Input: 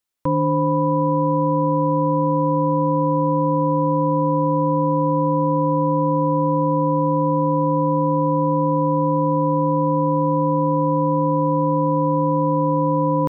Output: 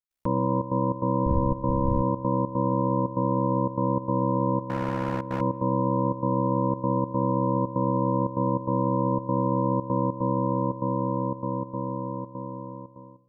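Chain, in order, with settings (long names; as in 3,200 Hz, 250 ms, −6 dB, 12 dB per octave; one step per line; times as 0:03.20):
fade-out on the ending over 3.33 s
0:01.25–0:02.00: wind on the microphone 120 Hz −21 dBFS
low-shelf EQ 86 Hz +11.5 dB
in parallel at +1 dB: brickwall limiter −12 dBFS, peak gain reduction 9 dB
on the sum: gate pattern ".xxxxx.xx.xxxxx" 147 BPM −12 dB
0:04.65–0:05.41: gain into a clipping stage and back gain 13.5 dB
ring modulation 33 Hz
on a send at −23.5 dB: convolution reverb RT60 2.6 s, pre-delay 3 ms
on the sum: level −9 dB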